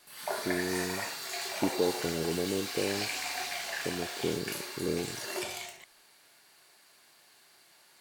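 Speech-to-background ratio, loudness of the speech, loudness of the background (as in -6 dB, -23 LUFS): 0.0 dB, -35.5 LUFS, -35.5 LUFS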